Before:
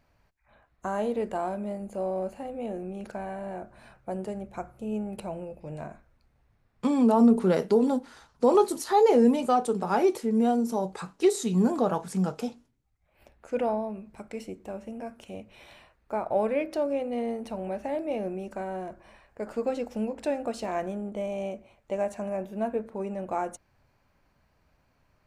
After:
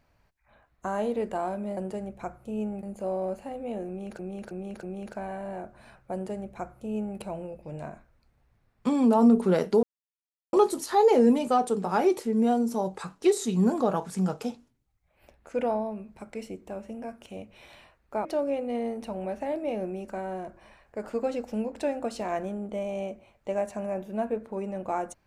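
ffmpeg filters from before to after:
-filter_complex "[0:a]asplit=9[s0][s1][s2][s3][s4][s5][s6][s7][s8];[s0]atrim=end=1.772[s9];[s1]atrim=start=4.108:end=5.172[s10];[s2]atrim=start=1.768:end=3.132[s11];[s3]atrim=start=2.808:end=3.132[s12];[s4]atrim=start=2.808:end=3.132[s13];[s5]atrim=start=2.808:end=7.81,asetpts=PTS-STARTPTS,afade=t=out:st=4.998:d=0.004:c=hsin[s14];[s6]atrim=start=7.81:end=8.51,asetpts=PTS-STARTPTS,volume=0[s15];[s7]atrim=start=8.51:end=16.232,asetpts=PTS-STARTPTS,afade=t=in:d=0.004:c=hsin[s16];[s8]atrim=start=16.678[s17];[s9][s10]acrossfade=d=0.004:c1=hsin:c2=hsin[s18];[s18][s11]acrossfade=d=0.004:c1=hsin:c2=hsin[s19];[s19][s12]acrossfade=d=0.004:c1=hsin:c2=hsin[s20];[s20][s13]acrossfade=d=0.004:c1=hsin:c2=hsin[s21];[s14][s15][s16]concat=n=3:v=0:a=1[s22];[s21][s22]acrossfade=d=0.004:c1=hsin:c2=hsin[s23];[s23][s17]acrossfade=d=0.004:c1=hsin:c2=hsin"

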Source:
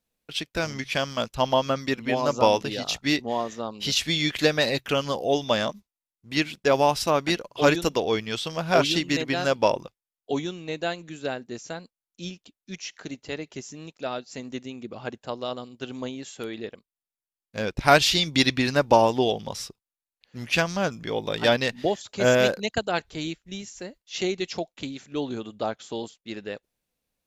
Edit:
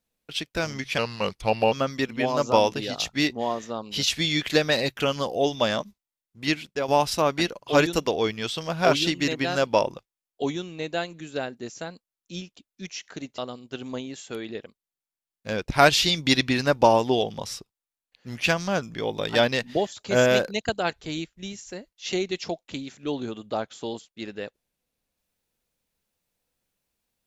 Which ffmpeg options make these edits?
-filter_complex "[0:a]asplit=5[s0][s1][s2][s3][s4];[s0]atrim=end=0.984[s5];[s1]atrim=start=0.98:end=1.61,asetpts=PTS-STARTPTS,asetrate=37485,aresample=44100[s6];[s2]atrim=start=1.606:end=6.77,asetpts=PTS-STARTPTS,afade=t=out:st=4.764:d=0.4:silence=0.316228[s7];[s3]atrim=start=6.77:end=13.272,asetpts=PTS-STARTPTS,afade=t=in:d=0.004:c=hsin:silence=0.316228[s8];[s4]atrim=start=15.468[s9];[s5][s6]acrossfade=d=0.004:c1=hsin:c2=hsin[s10];[s7][s8]concat=n=2:v=0:a=1[s11];[s10][s11]acrossfade=d=0.004:c1=hsin:c2=hsin[s12];[s12][s9]acrossfade=d=0.004:c1=hsin:c2=hsin"

